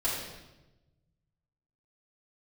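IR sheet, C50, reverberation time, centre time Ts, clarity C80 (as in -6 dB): 1.5 dB, 1.0 s, 63 ms, 3.5 dB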